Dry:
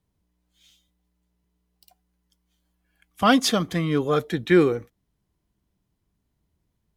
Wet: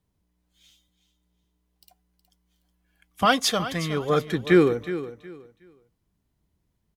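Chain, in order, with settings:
0:03.25–0:04.10: parametric band 250 Hz −9.5 dB 1.1 octaves
repeating echo 367 ms, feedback 24%, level −13 dB

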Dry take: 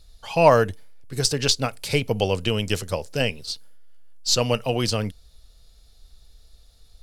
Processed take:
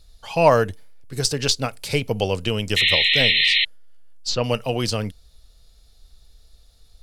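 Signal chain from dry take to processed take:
0:03.43–0:04.44: treble cut that deepens with the level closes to 2,900 Hz, closed at −17 dBFS
0:02.76–0:03.65: sound drawn into the spectrogram noise 1,800–4,200 Hz −18 dBFS

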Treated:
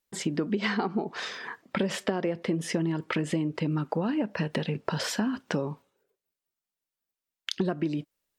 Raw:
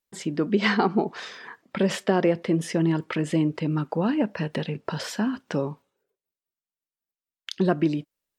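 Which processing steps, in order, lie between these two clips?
downward compressor 10 to 1, threshold −27 dBFS, peak gain reduction 12 dB
level +3 dB

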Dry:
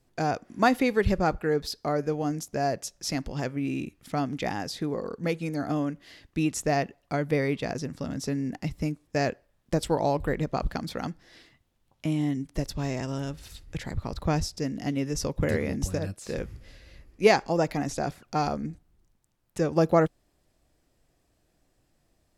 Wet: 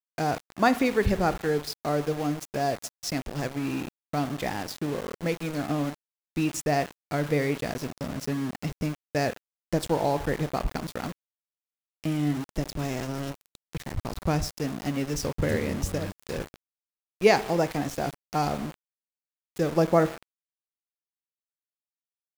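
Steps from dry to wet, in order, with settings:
spring reverb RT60 1 s, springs 34/47 ms, chirp 70 ms, DRR 13 dB
centre clipping without the shift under −33.5 dBFS

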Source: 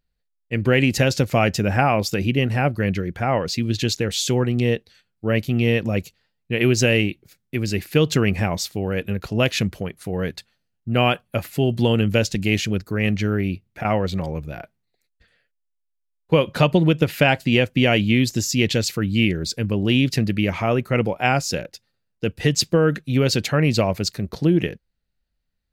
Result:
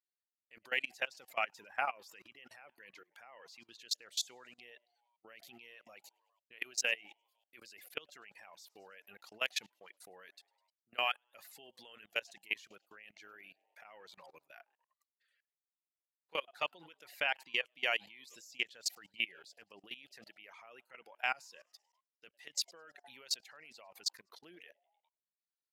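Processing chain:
echo with shifted repeats 102 ms, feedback 53%, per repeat +120 Hz, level −19 dB
reverb reduction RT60 1 s
high-pass filter 1,000 Hz 12 dB per octave
output level in coarse steps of 24 dB
level −8 dB

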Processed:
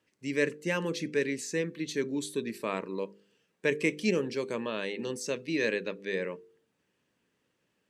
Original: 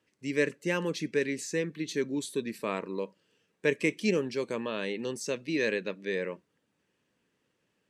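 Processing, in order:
hum removal 50.09 Hz, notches 10

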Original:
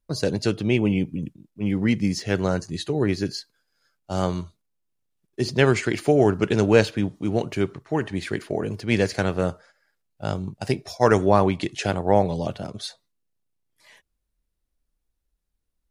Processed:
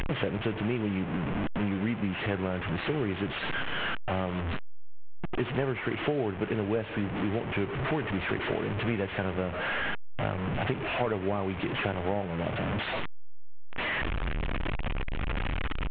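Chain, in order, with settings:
linear delta modulator 16 kbit/s, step −23 dBFS
downward compressor 6 to 1, threshold −26 dBFS, peak gain reduction 14.5 dB

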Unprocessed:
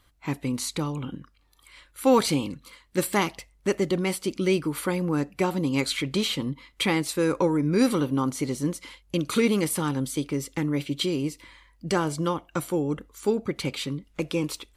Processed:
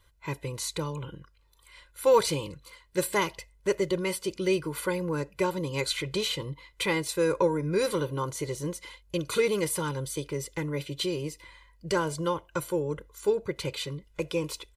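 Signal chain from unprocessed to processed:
comb filter 2 ms, depth 87%
level −4.5 dB

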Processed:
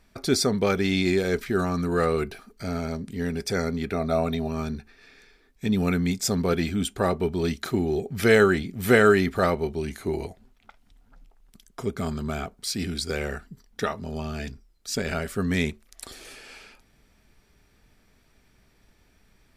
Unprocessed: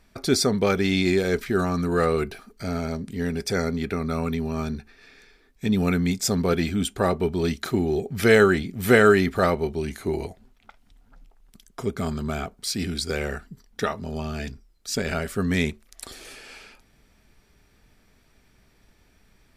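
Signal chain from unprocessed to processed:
0:03.94–0:04.48: hollow resonant body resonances 660/3,700 Hz, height 18 dB
level −1.5 dB

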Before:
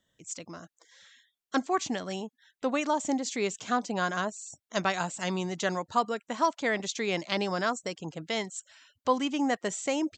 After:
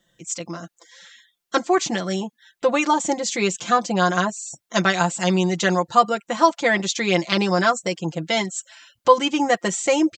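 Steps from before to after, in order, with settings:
comb filter 5.8 ms, depth 84%
level +7.5 dB

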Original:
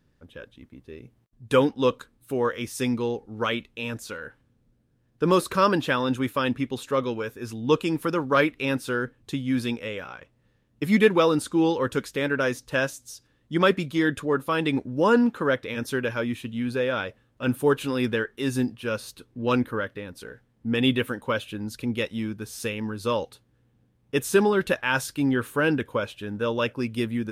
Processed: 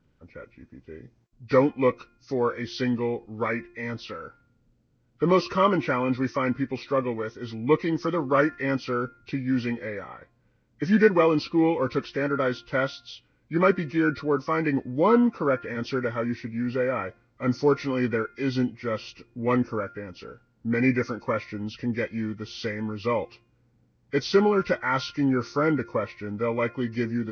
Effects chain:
hearing-aid frequency compression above 1,100 Hz 1.5 to 1
hum removal 350.9 Hz, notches 8

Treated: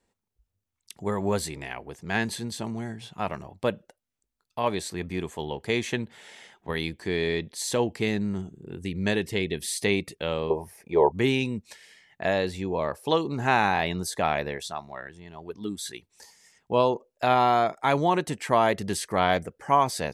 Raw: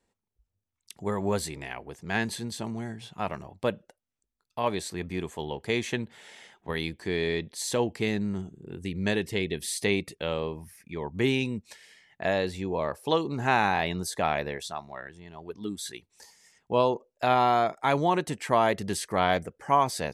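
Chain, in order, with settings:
0:10.50–0:11.12: flat-topped bell 600 Hz +15.5 dB
level +1.5 dB

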